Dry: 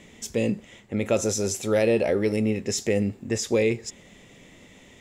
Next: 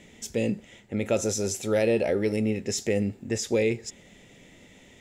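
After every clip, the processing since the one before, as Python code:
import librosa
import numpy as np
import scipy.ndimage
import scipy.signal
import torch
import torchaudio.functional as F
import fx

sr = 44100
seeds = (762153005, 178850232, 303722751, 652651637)

y = fx.notch(x, sr, hz=1100.0, q=5.9)
y = F.gain(torch.from_numpy(y), -2.0).numpy()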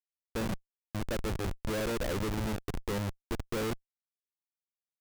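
y = scipy.ndimage.median_filter(x, 5, mode='constant')
y = fx.schmitt(y, sr, flips_db=-25.0)
y = F.gain(torch.from_numpy(y), -3.5).numpy()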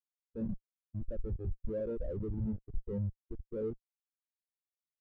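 y = fx.spectral_expand(x, sr, expansion=2.5)
y = F.gain(torch.from_numpy(y), 1.0).numpy()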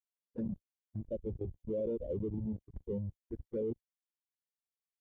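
y = fx.env_flanger(x, sr, rest_ms=4.4, full_db=-34.5)
y = fx.level_steps(y, sr, step_db=14)
y = fx.notch_comb(y, sr, f0_hz=1300.0)
y = F.gain(torch.from_numpy(y), 8.5).numpy()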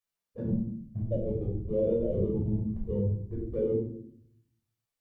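y = fx.room_shoebox(x, sr, seeds[0], volume_m3=940.0, walls='furnished', distance_m=5.9)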